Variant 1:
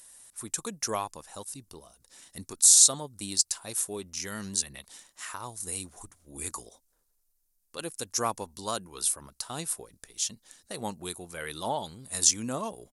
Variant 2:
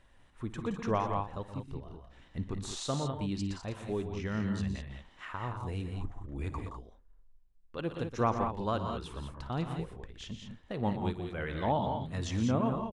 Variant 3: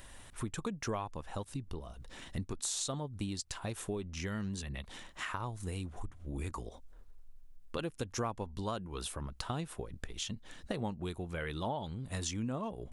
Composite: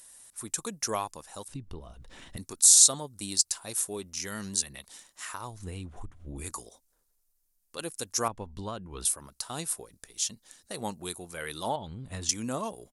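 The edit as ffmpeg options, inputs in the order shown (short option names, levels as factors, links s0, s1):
-filter_complex "[2:a]asplit=4[s0][s1][s2][s3];[0:a]asplit=5[s4][s5][s6][s7][s8];[s4]atrim=end=1.482[s9];[s0]atrim=start=1.478:end=2.372[s10];[s5]atrim=start=2.368:end=5.63[s11];[s1]atrim=start=5.39:end=6.56[s12];[s6]atrim=start=6.32:end=8.282[s13];[s2]atrim=start=8.278:end=9.052[s14];[s7]atrim=start=9.048:end=11.762[s15];[s3]atrim=start=11.758:end=12.292[s16];[s8]atrim=start=12.288[s17];[s9][s10]acrossfade=d=0.004:c1=hsin:c2=hsin[s18];[s18][s11]acrossfade=d=0.004:c1=hsin:c2=hsin[s19];[s19][s12]acrossfade=d=0.24:c1=tri:c2=tri[s20];[s20][s13]acrossfade=d=0.24:c1=tri:c2=tri[s21];[s21][s14]acrossfade=d=0.004:c1=hsin:c2=hsin[s22];[s22][s15]acrossfade=d=0.004:c1=hsin:c2=hsin[s23];[s23][s16]acrossfade=d=0.004:c1=hsin:c2=hsin[s24];[s24][s17]acrossfade=d=0.004:c1=hsin:c2=hsin"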